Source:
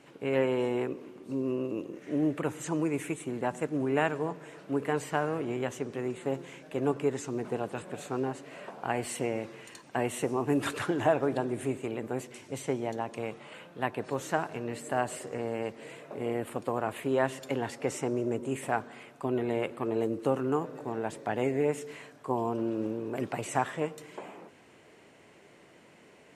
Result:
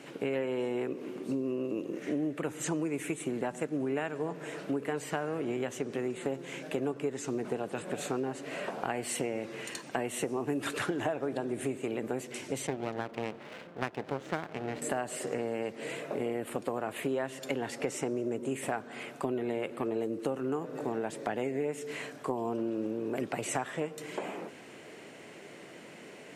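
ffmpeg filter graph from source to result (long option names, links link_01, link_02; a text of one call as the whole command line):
ffmpeg -i in.wav -filter_complex "[0:a]asettb=1/sr,asplit=3[link_01][link_02][link_03];[link_01]atrim=end=12.674[link_04];[link_02]atrim=start=12.67:end=14.82,asetpts=PTS-STARTPTS,afade=type=in:duration=0.004:curve=qsin,afade=type=out:start_time=2.146:duration=0.004:curve=qsin,adynamicsmooth=sensitivity=6:basefreq=2000,aeval=exprs='max(val(0),0)':channel_layout=same[link_05];[link_03]atrim=start=14.816[link_06];[link_04][link_05]acrossfade=duration=0.004:curve1=hsin:curve2=qsin[link_07];[link_07][link_06]acrossfade=duration=0.004:curve1=qsin:curve2=hsin,highpass=140,equalizer=frequency=990:width_type=o:width=0.66:gain=-4,acompressor=threshold=-39dB:ratio=5,volume=8.5dB" out.wav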